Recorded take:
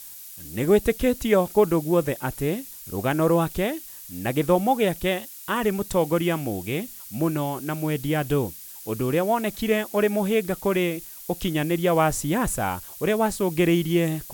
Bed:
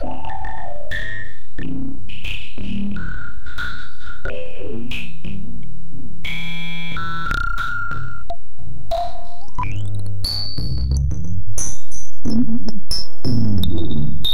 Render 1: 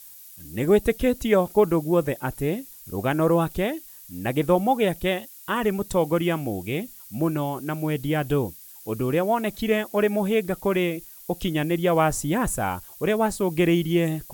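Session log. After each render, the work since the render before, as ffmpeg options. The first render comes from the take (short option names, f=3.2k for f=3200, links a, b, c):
-af "afftdn=nr=6:nf=-42"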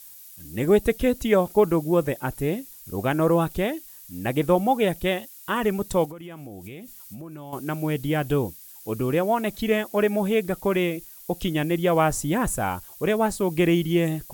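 -filter_complex "[0:a]asettb=1/sr,asplit=3[a][b][c];[a]atrim=end=6.054[d];[b]atrim=start=6.05:end=7.53,asetpts=PTS-STARTPTS,afade=t=in:d=0.004:c=qsin,afade=t=out:st=1.476:d=0.004:c=qsin,acompressor=threshold=-35dB:ratio=12:attack=3.2:release=140:knee=1:detection=peak[e];[c]atrim=start=7.526[f];[d][e]acrossfade=d=0.004:c1=hsin:c2=qsin[g];[g][f]acrossfade=d=0.004:c1=qsin:c2=hsin"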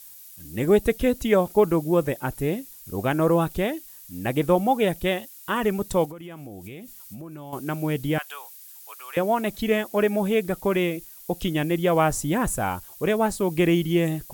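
-filter_complex "[0:a]asettb=1/sr,asplit=3[a][b][c];[a]atrim=end=8.184[d];[b]atrim=start=8.18:end=9.17,asetpts=PTS-STARTPTS,afade=t=in:d=0.004:c=qsin,afade=t=out:st=0.986:d=0.004:c=qsin,highpass=f=960:w=0.5412,highpass=f=960:w=1.3066[e];[c]atrim=start=9.166[f];[d][e]acrossfade=d=0.004:c1=hsin:c2=qsin[g];[g][f]acrossfade=d=0.004:c1=qsin:c2=hsin"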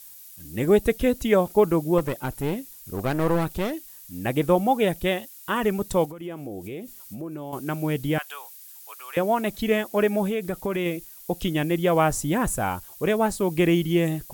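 -filter_complex "[0:a]asettb=1/sr,asplit=3[a][b][c];[a]atrim=end=1.984[d];[b]atrim=start=1.98:end=3.73,asetpts=PTS-STARTPTS,afade=t=in:d=0.004:c=qsin,afade=t=out:st=1.746:d=0.004:c=qsin,aeval=exprs='clip(val(0),-1,0.0355)':c=same[e];[c]atrim=start=3.726[f];[d][e]acrossfade=d=0.004:c1=hsin:c2=qsin[g];[g][f]acrossfade=d=0.004:c1=qsin:c2=hsin,asettb=1/sr,asplit=3[h][i][j];[h]atrim=end=6.214[k];[i]atrim=start=6.21:end=7.52,asetpts=PTS-STARTPTS,afade=t=in:d=0.004:c=qsin,afade=t=out:st=1.306:d=0.004:c=qsin,equalizer=f=420:w=1:g=8[l];[j]atrim=start=7.516[m];[k][l]acrossfade=d=0.004:c1=hsin:c2=qsin[n];[n][m]acrossfade=d=0.004:c1=qsin:c2=hsin,asettb=1/sr,asplit=3[o][p][q];[o]atrim=end=10.254[r];[p]atrim=start=10.25:end=10.86,asetpts=PTS-STARTPTS,afade=t=in:d=0.004:c=qsin,afade=t=out:st=0.606:d=0.004:c=qsin,acompressor=threshold=-22dB:ratio=5:attack=3.2:release=140:knee=1:detection=peak[s];[q]atrim=start=10.856[t];[r][s]acrossfade=d=0.004:c1=hsin:c2=qsin[u];[u][t]acrossfade=d=0.004:c1=qsin:c2=hsin"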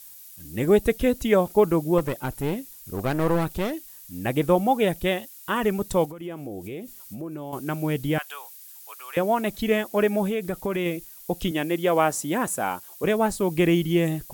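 -filter_complex "[0:a]asettb=1/sr,asplit=3[a][b][c];[a]atrim=end=11.514[d];[b]atrim=start=11.51:end=13.04,asetpts=PTS-STARTPTS,afade=t=in:d=0.004:c=qsin,afade=t=out:st=1.526:d=0.004:c=qsin,highpass=230[e];[c]atrim=start=13.036[f];[d][e]acrossfade=d=0.004:c1=hsin:c2=qsin[g];[g][f]acrossfade=d=0.004:c1=qsin:c2=hsin"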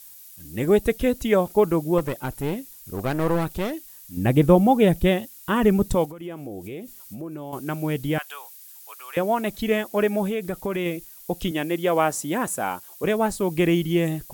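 -filter_complex "[0:a]asettb=1/sr,asplit=3[a][b][c];[a]atrim=end=4.174[d];[b]atrim=start=4.17:end=5.95,asetpts=PTS-STARTPTS,afade=t=in:d=0.004:c=qsin,afade=t=out:st=1.776:d=0.004:c=qsin,lowshelf=f=330:g=11[e];[c]atrim=start=5.946[f];[d][e]acrossfade=d=0.004:c1=hsin:c2=qsin[g];[g][f]acrossfade=d=0.004:c1=qsin:c2=hsin"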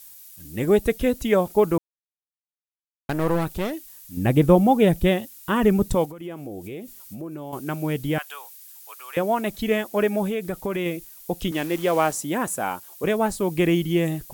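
-filter_complex "[0:a]asettb=1/sr,asplit=3[a][b][c];[a]atrim=end=11.524[d];[b]atrim=start=11.52:end=12.13,asetpts=PTS-STARTPTS,afade=t=in:d=0.004:c=qsin,afade=t=out:st=0.606:d=0.004:c=qsin,acrusher=bits=7:dc=4:mix=0:aa=0.000001[e];[c]atrim=start=12.126[f];[d][e]acrossfade=d=0.004:c1=hsin:c2=qsin[g];[g][f]acrossfade=d=0.004:c1=qsin:c2=hsin,asplit=3[h][i][j];[h]atrim=end=1.78,asetpts=PTS-STARTPTS,afade=t=out:st=1.776:d=0.004:c=hsin[k];[i]atrim=start=1.78:end=3.09,asetpts=PTS-STARTPTS,volume=0[l];[j]atrim=start=3.09,asetpts=PTS-STARTPTS,afade=t=in:d=0.004:c=hsin[m];[k][l][m]concat=n=3:v=0:a=1"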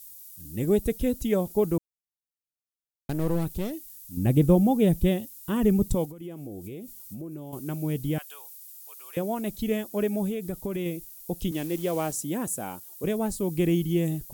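-af "equalizer=f=1.4k:w=0.42:g=-13.5"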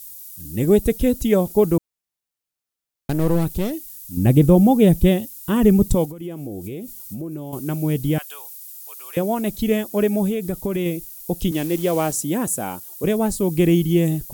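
-af "volume=7.5dB,alimiter=limit=-3dB:level=0:latency=1"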